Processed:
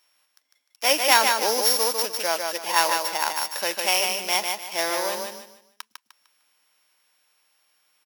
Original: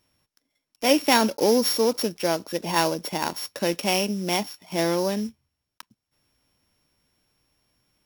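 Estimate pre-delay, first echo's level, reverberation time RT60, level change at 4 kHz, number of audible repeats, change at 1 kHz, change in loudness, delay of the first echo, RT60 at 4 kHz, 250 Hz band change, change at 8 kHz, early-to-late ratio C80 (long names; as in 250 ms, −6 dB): no reverb audible, −4.5 dB, no reverb audible, +4.0 dB, 3, +3.0 dB, +2.0 dB, 151 ms, no reverb audible, −14.0 dB, +6.0 dB, no reverb audible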